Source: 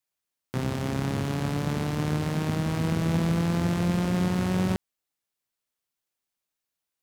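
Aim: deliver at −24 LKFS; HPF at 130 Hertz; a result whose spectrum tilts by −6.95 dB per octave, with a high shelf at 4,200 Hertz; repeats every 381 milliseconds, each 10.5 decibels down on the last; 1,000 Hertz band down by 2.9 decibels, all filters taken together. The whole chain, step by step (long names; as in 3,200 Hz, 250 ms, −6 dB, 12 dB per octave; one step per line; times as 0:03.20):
high-pass filter 130 Hz
parametric band 1,000 Hz −3.5 dB
high-shelf EQ 4,200 Hz −5 dB
repeating echo 381 ms, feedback 30%, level −10.5 dB
level +4.5 dB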